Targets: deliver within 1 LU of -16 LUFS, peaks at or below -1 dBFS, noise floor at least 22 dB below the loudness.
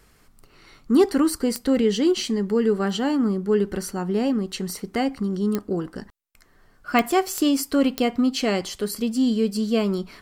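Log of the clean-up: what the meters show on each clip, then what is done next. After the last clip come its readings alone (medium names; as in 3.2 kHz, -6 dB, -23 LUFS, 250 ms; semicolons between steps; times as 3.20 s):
clicks found 5; loudness -23.0 LUFS; peak level -5.0 dBFS; loudness target -16.0 LUFS
-> de-click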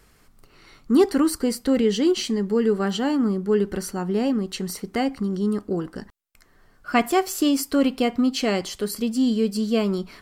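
clicks found 0; loudness -23.0 LUFS; peak level -5.0 dBFS; loudness target -16.0 LUFS
-> trim +7 dB; peak limiter -1 dBFS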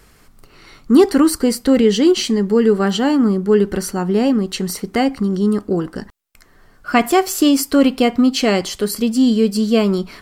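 loudness -16.0 LUFS; peak level -1.0 dBFS; noise floor -50 dBFS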